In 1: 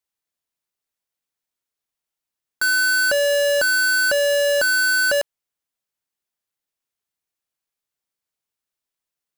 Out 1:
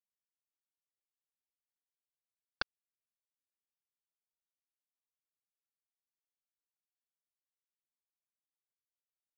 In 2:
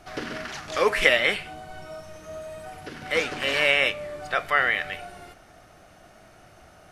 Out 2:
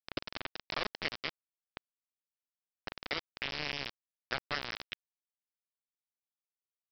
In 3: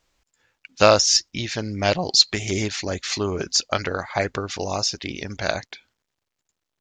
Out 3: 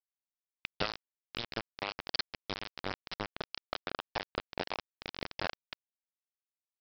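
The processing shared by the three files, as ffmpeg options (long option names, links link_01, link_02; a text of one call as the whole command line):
ffmpeg -i in.wav -af "acompressor=threshold=-34dB:ratio=12,aresample=11025,acrusher=bits=4:mix=0:aa=0.000001,aresample=44100,volume=1dB" out.wav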